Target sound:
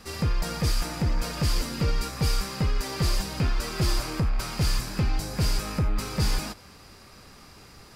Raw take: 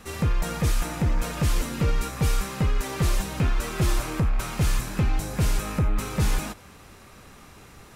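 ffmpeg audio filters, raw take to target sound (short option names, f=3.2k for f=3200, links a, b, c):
-af "equalizer=f=4.8k:w=5.6:g=14.5,volume=-2dB"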